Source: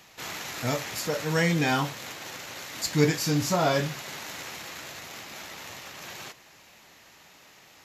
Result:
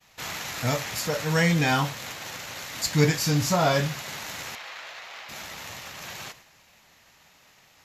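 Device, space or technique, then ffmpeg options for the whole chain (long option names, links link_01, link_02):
low shelf boost with a cut just above: -filter_complex "[0:a]asettb=1/sr,asplit=3[link_01][link_02][link_03];[link_01]atrim=end=4.554[link_04];[link_02]atrim=start=4.55:end=5.29,asetpts=PTS-STARTPTS,afade=type=in:duration=0.004:curve=qsin,afade=type=out:start_time=0.736:duration=0.004:curve=qsin,acrossover=split=470 4700:gain=0.0708 1 0.141[link_05][link_06][link_07];[link_05][link_06][link_07]amix=inputs=3:normalize=0[link_08];[link_03]atrim=start=5.286[link_09];[link_04][link_08]acrossfade=duration=0.004:curve1=hsin:curve2=qsin[link_10];[link_10][link_09]acrossfade=duration=0.004:curve1=qsin:curve2=hsin,agate=range=-33dB:threshold=-48dB:ratio=3:detection=peak,lowshelf=frequency=93:gain=6.5,equalizer=frequency=340:width_type=o:width=0.83:gain=-5.5,volume=2.5dB"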